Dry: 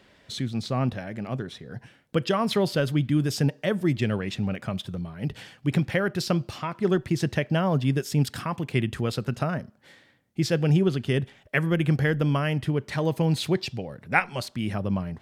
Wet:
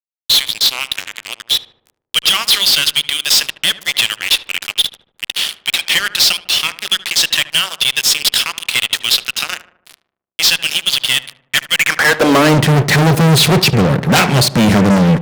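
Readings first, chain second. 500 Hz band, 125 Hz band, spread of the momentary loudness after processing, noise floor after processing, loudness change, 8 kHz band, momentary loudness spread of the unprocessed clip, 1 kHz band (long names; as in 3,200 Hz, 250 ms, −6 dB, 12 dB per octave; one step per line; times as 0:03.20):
+7.5 dB, +7.5 dB, 8 LU, −74 dBFS, +13.5 dB, +24.0 dB, 10 LU, +12.0 dB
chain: wrap-around overflow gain 10 dB
high-pass filter sweep 3,300 Hz → 140 Hz, 0:11.69–0:12.66
fuzz pedal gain 37 dB, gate −44 dBFS
low-shelf EQ 67 Hz −9.5 dB
feedback echo with a low-pass in the loop 75 ms, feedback 54%, low-pass 1,500 Hz, level −14 dB
level +5.5 dB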